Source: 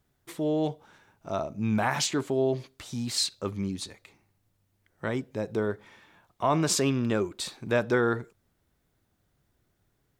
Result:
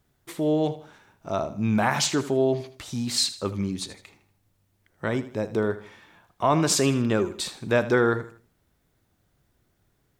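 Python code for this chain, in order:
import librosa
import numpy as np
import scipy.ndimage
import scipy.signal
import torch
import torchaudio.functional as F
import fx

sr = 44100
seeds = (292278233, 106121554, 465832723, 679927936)

y = fx.echo_feedback(x, sr, ms=79, feedback_pct=37, wet_db=-14.5)
y = F.gain(torch.from_numpy(y), 3.5).numpy()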